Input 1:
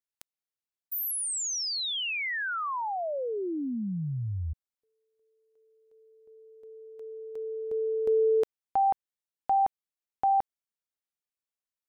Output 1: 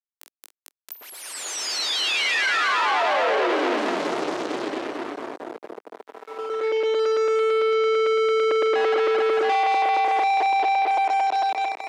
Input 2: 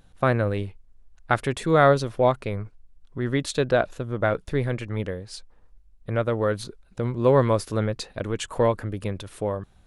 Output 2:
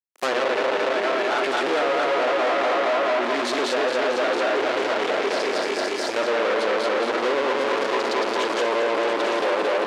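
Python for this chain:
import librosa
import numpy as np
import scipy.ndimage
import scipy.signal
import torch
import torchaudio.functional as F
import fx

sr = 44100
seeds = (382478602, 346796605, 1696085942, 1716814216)

y = fx.reverse_delay_fb(x, sr, ms=112, feedback_pct=80, wet_db=0.0)
y = fx.echo_multitap(y, sr, ms=(46, 675), db=(-17.5, -10.5))
y = fx.fuzz(y, sr, gain_db=43.0, gate_db=-44.0)
y = scipy.signal.sosfilt(scipy.signal.butter(4, 330.0, 'highpass', fs=sr, output='sos'), y)
y = fx.env_lowpass_down(y, sr, base_hz=2900.0, full_db=-10.5)
y = y * librosa.db_to_amplitude(-6.0)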